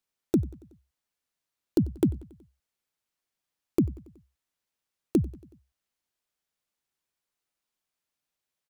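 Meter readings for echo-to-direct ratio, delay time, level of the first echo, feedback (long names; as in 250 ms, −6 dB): −20.0 dB, 93 ms, −22.0 dB, 59%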